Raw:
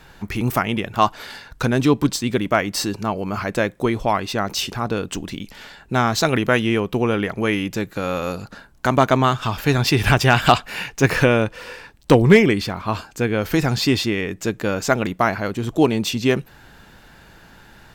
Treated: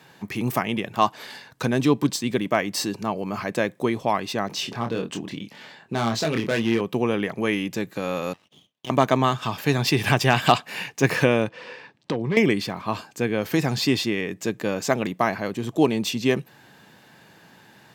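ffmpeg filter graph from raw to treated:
-filter_complex "[0:a]asettb=1/sr,asplit=3[a][b][c];[a]atrim=end=4.484[d];[b]atrim=start=4.48:end=6.81,asetpts=PTS-STARTPTS,afade=t=in:d=0.004:c=qsin,afade=t=out:st=2.326:d=0.004:c=qsin,highshelf=f=7.5k:g=-11.5,volume=15.5dB,asoftclip=hard,volume=-15.5dB,asplit=2[e][f];[f]adelay=26,volume=-6dB[g];[e][g]amix=inputs=2:normalize=0,atrim=end_sample=102753[h];[c]atrim=start=6.806[i];[d][h]acrossfade=d=0.004:c1=hsin:c2=qsin[j];[j][i]acrossfade=d=0.004:c1=qsin:c2=hsin,asettb=1/sr,asplit=3[k][l][m];[k]atrim=end=8.334[n];[l]atrim=start=8.33:end=8.9,asetpts=PTS-STARTPTS,afade=t=in:d=0.004:c=qsin,afade=t=out:st=0.566:d=0.004:c=qsin,bandpass=f=1.8k:t=q:w=3.9,aeval=exprs='abs(val(0))':c=same[o];[m]atrim=start=8.896[p];[n][o]acrossfade=d=0.004:c1=hsin:c2=qsin[q];[q][p]acrossfade=d=0.004:c1=qsin:c2=hsin,asettb=1/sr,asplit=3[r][s][t];[r]atrim=end=11.494[u];[s]atrim=start=11.49:end=12.37,asetpts=PTS-STARTPTS,afade=t=in:d=0.004:c=qsin,afade=t=out:st=0.876:d=0.004:c=qsin,volume=6.5dB,asoftclip=hard,volume=-6.5dB,acompressor=threshold=-18dB:ratio=12:attack=3.2:release=140:knee=1:detection=peak,highpass=100,lowpass=4.3k[v];[t]atrim=start=12.366[w];[u][v]acrossfade=d=0.004:c1=hsin:c2=qsin[x];[x][w]acrossfade=d=0.004:c1=qsin:c2=hsin,highpass=f=120:w=0.5412,highpass=f=120:w=1.3066,bandreject=f=1.4k:w=8.1,volume=-3dB"

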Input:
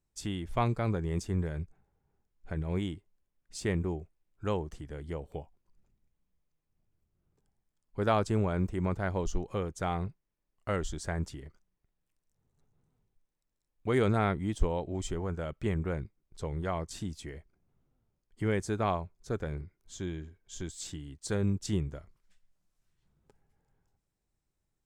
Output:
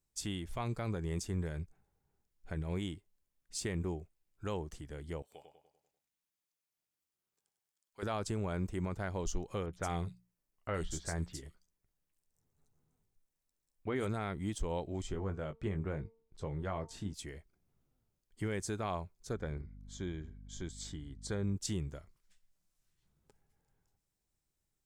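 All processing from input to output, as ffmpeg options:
-filter_complex "[0:a]asettb=1/sr,asplit=3[a][b][c];[a]atrim=end=5.224[d];[b]atrim=start=5.22:end=8.03,asetpts=PTS-STARTPTS,afade=t=in:d=0.004:c=qsin,afade=t=out:st=2.806:d=0.004:c=qsin,highpass=f=1.5k:p=1,asplit=2[e][f];[f]adelay=98,lowpass=f=4.4k:p=1,volume=-5.5dB,asplit=2[g][h];[h]adelay=98,lowpass=f=4.4k:p=1,volume=0.5,asplit=2[i][j];[j]adelay=98,lowpass=f=4.4k:p=1,volume=0.5,asplit=2[k][l];[l]adelay=98,lowpass=f=4.4k:p=1,volume=0.5,asplit=2[m][n];[n]adelay=98,lowpass=f=4.4k:p=1,volume=0.5,asplit=2[o][p];[p]adelay=98,lowpass=f=4.4k:p=1,volume=0.5[q];[e][g][i][k][m][o][q]amix=inputs=7:normalize=0,atrim=end_sample=123921[r];[c]atrim=start=8.026[s];[d][r]acrossfade=d=0.004:c1=hsin:c2=qsin[t];[t][s]acrossfade=d=0.004:c1=qsin:c2=hsin,asettb=1/sr,asplit=3[u][v][w];[u]atrim=end=9.664[x];[v]atrim=start=9.66:end=14.07,asetpts=PTS-STARTPTS,afade=t=in:d=0.004:c=qsin,afade=t=out:st=4.406:d=0.004:c=qsin,bandreject=f=60:t=h:w=6,bandreject=f=120:t=h:w=6,bandreject=f=180:t=h:w=6,asplit=2[y][z];[z]adelay=12,volume=-12dB[aa];[y][aa]amix=inputs=2:normalize=0,atrim=end_sample=194481,acrossover=split=3400[ab][ac];[ac]adelay=70[ad];[ab][ad]amix=inputs=2:normalize=0,atrim=end_sample=194481[ae];[w]atrim=start=14.066[af];[x][ae]acrossfade=d=0.004:c1=hsin:c2=qsin[ag];[ag][af]acrossfade=d=0.004:c1=qsin:c2=hsin,asettb=1/sr,asplit=3[ah][ai][aj];[ah]atrim=end=15.024[ak];[ai]atrim=start=15.02:end=17.14,asetpts=PTS-STARTPTS,afade=t=in:d=0.004:c=qsin,afade=t=out:st=2.116:d=0.004:c=qsin,lowpass=f=1.9k:p=1,asplit=2[al][am];[am]adelay=20,volume=-8dB[an];[al][an]amix=inputs=2:normalize=0,atrim=end_sample=93492,bandreject=f=226.6:t=h:w=4,bandreject=f=453.2:t=h:w=4,bandreject=f=679.8:t=h:w=4,bandreject=f=906.4:t=h:w=4,bandreject=f=1.133k:t=h:w=4[ao];[aj]atrim=start=17.136[ap];[ak][ao]acrossfade=d=0.004:c1=hsin:c2=qsin[aq];[aq][ap]acrossfade=d=0.004:c1=qsin:c2=hsin,asettb=1/sr,asplit=3[ar][as][at];[ar]atrim=end=19.334[au];[as]atrim=start=19.33:end=21.56,asetpts=PTS-STARTPTS,afade=t=in:d=0.004:c=qsin,afade=t=out:st=2.226:d=0.004:c=qsin,aemphasis=mode=reproduction:type=50fm,aeval=exprs='val(0)+0.00501*(sin(2*PI*50*n/s)+sin(2*PI*2*50*n/s)/2+sin(2*PI*3*50*n/s)/3+sin(2*PI*4*50*n/s)/4+sin(2*PI*5*50*n/s)/5)':c=same,asuperstop=centerf=2700:order=4:qfactor=6.6[av];[at]atrim=start=21.556[aw];[au][av]acrossfade=d=0.004:c1=hsin:c2=qsin[ax];[ax][aw]acrossfade=d=0.004:c1=qsin:c2=hsin,highshelf=f=3.3k:g=8,alimiter=limit=-21.5dB:level=0:latency=1:release=97,volume=-4dB"

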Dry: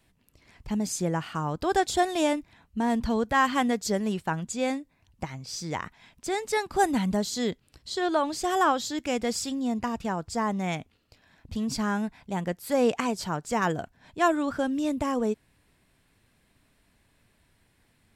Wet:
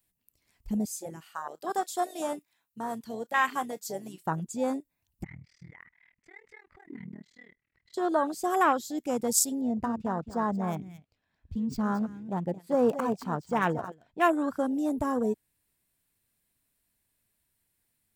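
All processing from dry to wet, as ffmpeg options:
-filter_complex "[0:a]asettb=1/sr,asplit=3[a][b][c];[a]atrim=end=0.854[d];[b]atrim=start=0.85:end=4.25,asetpts=PTS-STARTPTS,afade=t=in:d=0.004:c=qsin,afade=t=out:st=3.396:d=0.004:c=qsin,highpass=f=920:p=1,asplit=2[e][f];[f]adelay=31,volume=-14dB[g];[e][g]amix=inputs=2:normalize=0,atrim=end_sample=149940[h];[c]atrim=start=4.246[i];[d][h]acrossfade=d=0.004:c1=hsin:c2=qsin[j];[j][i]acrossfade=d=0.004:c1=qsin:c2=hsin,asettb=1/sr,asplit=3[k][l][m];[k]atrim=end=5.244[n];[l]atrim=start=5.24:end=7.94,asetpts=PTS-STARTPTS,afade=t=in:d=0.004:c=qsin,afade=t=out:st=2.696:d=0.004:c=qsin,tremolo=f=39:d=1,acompressor=threshold=-36dB:ratio=10:attack=3.2:release=140:knee=1:detection=peak,lowpass=f=2k:t=q:w=9.5[o];[m]atrim=start=7.936[p];[n][o]acrossfade=d=0.004:c1=hsin:c2=qsin[q];[q][p]acrossfade=d=0.004:c1=qsin:c2=hsin,asettb=1/sr,asplit=3[r][s][t];[r]atrim=end=9.614[u];[s]atrim=start=9.61:end=14.28,asetpts=PTS-STARTPTS,afade=t=in:d=0.004:c=qsin,afade=t=out:st=4.666:d=0.004:c=qsin,adynamicsmooth=sensitivity=4.5:basefreq=3.2k,aecho=1:1:223:0.282,atrim=end_sample=205947[v];[t]atrim=start=14.276[w];[u][v]acrossfade=d=0.004:c1=hsin:c2=qsin[x];[x][w]acrossfade=d=0.004:c1=qsin:c2=hsin,aemphasis=mode=production:type=50kf,afwtdn=0.0398,highshelf=f=10k:g=11.5,volume=-1dB"

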